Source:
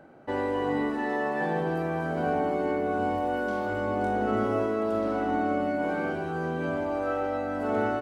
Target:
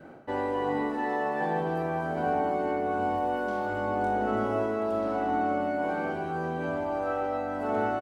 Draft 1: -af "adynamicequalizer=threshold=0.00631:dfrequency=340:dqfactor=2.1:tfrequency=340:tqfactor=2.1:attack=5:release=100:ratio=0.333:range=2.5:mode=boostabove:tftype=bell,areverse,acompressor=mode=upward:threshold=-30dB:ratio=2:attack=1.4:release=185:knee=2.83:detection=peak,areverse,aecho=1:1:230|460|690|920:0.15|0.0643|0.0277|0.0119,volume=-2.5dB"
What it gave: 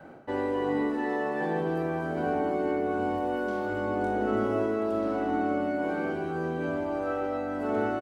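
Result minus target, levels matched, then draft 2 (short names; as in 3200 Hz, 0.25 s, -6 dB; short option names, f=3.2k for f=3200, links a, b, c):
1000 Hz band -3.5 dB
-af "adynamicequalizer=threshold=0.00631:dfrequency=820:dqfactor=2.1:tfrequency=820:tqfactor=2.1:attack=5:release=100:ratio=0.333:range=2.5:mode=boostabove:tftype=bell,areverse,acompressor=mode=upward:threshold=-30dB:ratio=2:attack=1.4:release=185:knee=2.83:detection=peak,areverse,aecho=1:1:230|460|690|920:0.15|0.0643|0.0277|0.0119,volume=-2.5dB"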